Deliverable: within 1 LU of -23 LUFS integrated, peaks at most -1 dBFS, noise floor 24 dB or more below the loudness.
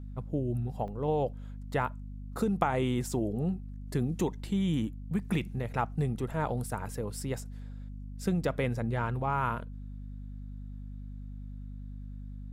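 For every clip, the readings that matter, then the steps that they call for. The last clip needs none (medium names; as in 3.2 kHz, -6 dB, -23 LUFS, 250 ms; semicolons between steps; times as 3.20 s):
dropouts 1; longest dropout 2.8 ms; hum 50 Hz; highest harmonic 250 Hz; hum level -39 dBFS; loudness -32.5 LUFS; peak level -12.5 dBFS; loudness target -23.0 LUFS
-> interpolate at 0.88 s, 2.8 ms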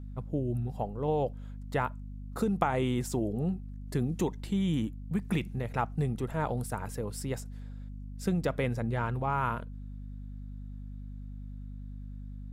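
dropouts 0; hum 50 Hz; highest harmonic 250 Hz; hum level -39 dBFS
-> hum notches 50/100/150/200/250 Hz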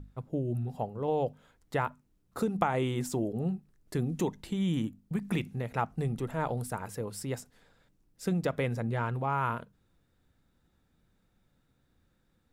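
hum not found; loudness -33.0 LUFS; peak level -12.5 dBFS; loudness target -23.0 LUFS
-> trim +10 dB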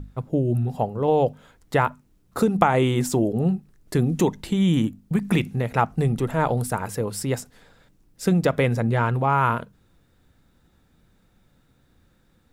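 loudness -23.0 LUFS; peak level -2.5 dBFS; noise floor -62 dBFS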